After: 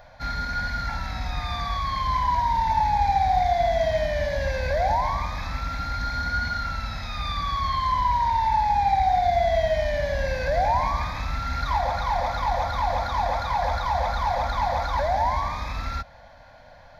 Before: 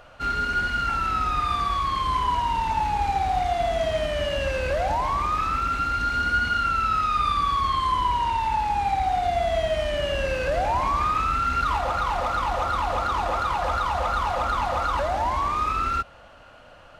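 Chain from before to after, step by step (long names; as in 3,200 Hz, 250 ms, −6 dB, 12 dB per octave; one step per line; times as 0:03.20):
phaser with its sweep stopped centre 1,900 Hz, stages 8
level +3 dB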